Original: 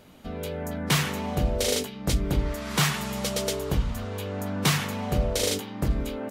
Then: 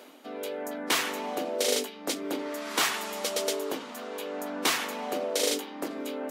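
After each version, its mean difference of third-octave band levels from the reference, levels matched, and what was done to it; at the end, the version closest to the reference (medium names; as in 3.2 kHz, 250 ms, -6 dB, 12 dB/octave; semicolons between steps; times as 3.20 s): 6.0 dB: Chebyshev high-pass 270 Hz, order 4; reverse; upward compressor, threshold -39 dBFS; reverse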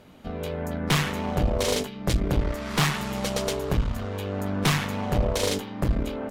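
2.0 dB: treble shelf 4.7 kHz -7.5 dB; valve stage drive 22 dB, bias 0.8; trim +6.5 dB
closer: second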